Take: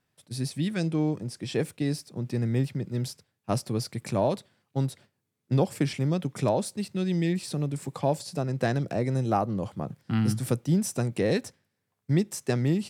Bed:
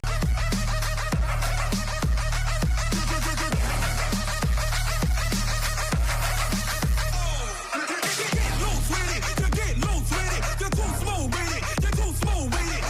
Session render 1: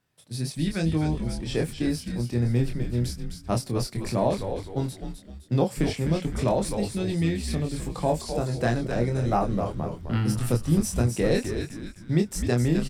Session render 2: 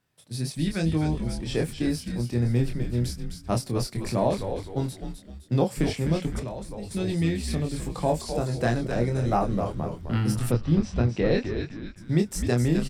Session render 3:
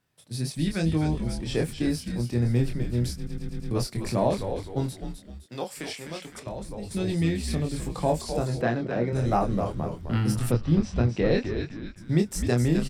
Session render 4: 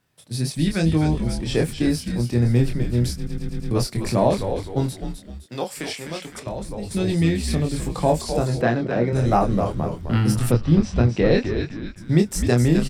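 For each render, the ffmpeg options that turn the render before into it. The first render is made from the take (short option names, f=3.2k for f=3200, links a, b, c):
-filter_complex "[0:a]asplit=2[a][b];[b]adelay=25,volume=-4dB[c];[a][c]amix=inputs=2:normalize=0,asplit=6[d][e][f][g][h][i];[e]adelay=257,afreqshift=-100,volume=-7dB[j];[f]adelay=514,afreqshift=-200,volume=-14.5dB[k];[g]adelay=771,afreqshift=-300,volume=-22.1dB[l];[h]adelay=1028,afreqshift=-400,volume=-29.6dB[m];[i]adelay=1285,afreqshift=-500,volume=-37.1dB[n];[d][j][k][l][m][n]amix=inputs=6:normalize=0"
-filter_complex "[0:a]asettb=1/sr,asplit=3[a][b][c];[a]atrim=end=6.394[d];[b]atrim=start=6.39:end=6.91,asetpts=PTS-STARTPTS,afade=t=in:d=0.004:c=qsin,afade=t=out:st=0.516:d=0.004:c=qsin,acrossover=split=110|1300[e][f][g];[e]acompressor=threshold=-39dB:ratio=4[h];[f]acompressor=threshold=-36dB:ratio=4[i];[g]acompressor=threshold=-51dB:ratio=4[j];[h][i][j]amix=inputs=3:normalize=0[k];[c]atrim=start=6.906[l];[d][k]acrossfade=d=0.004:c1=hsin:c2=qsin[m];[m][l]acrossfade=d=0.004:c1=qsin:c2=hsin,asplit=3[n][o][p];[n]afade=t=out:st=10.5:d=0.02[q];[o]lowpass=f=4.4k:w=0.5412,lowpass=f=4.4k:w=1.3066,afade=t=in:st=10.5:d=0.02,afade=t=out:st=11.96:d=0.02[r];[p]afade=t=in:st=11.96:d=0.02[s];[q][r][s]amix=inputs=3:normalize=0"
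-filter_complex "[0:a]asettb=1/sr,asplit=3[a][b][c];[a]atrim=end=5.464[d];[b]atrim=start=5.46:end=6.47,asetpts=PTS-STARTPTS,afade=t=in:d=0.004:c=qsin,afade=t=out:st=1.006:d=0.004:c=qsin,highpass=f=1.2k:p=1[e];[c]atrim=start=6.466[f];[d][e]acrossfade=d=0.004:c1=hsin:c2=qsin[g];[g][f]acrossfade=d=0.004:c1=qsin:c2=hsin,asettb=1/sr,asplit=3[h][i][j];[h]atrim=end=8.614[k];[i]atrim=start=8.61:end=9.13,asetpts=PTS-STARTPTS,afade=t=in:d=0.004:c=qsin,afade=t=out:st=0.516:d=0.004:c=qsin,highpass=140,lowpass=3.1k[l];[j]atrim=start=9.126[m];[k][l]acrossfade=d=0.004:c1=hsin:c2=qsin[n];[n][m]acrossfade=d=0.004:c1=qsin:c2=hsin,asplit=6[o][p][q][r][s][t];[o]atrim=end=3.272[u];[p]atrim=start=3.158:end=3.272[v];[q]atrim=start=3.158:end=3.272[w];[r]atrim=start=3.158:end=3.272[x];[s]atrim=start=3.158:end=3.272[y];[t]atrim=start=3.708[z];[u][v]acrossfade=d=0.004:c1=hsin:c2=hsin[aa];[aa][w]acrossfade=d=0.004:c1=hsin:c2=hsin[ab];[ab][x]acrossfade=d=0.004:c1=hsin:c2=hsin[ac];[ac][y]acrossfade=d=0.004:c1=hsin:c2=hsin[ad];[ad][z]acrossfade=d=0.004:c1=hsin:c2=hsin"
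-af "volume=5.5dB"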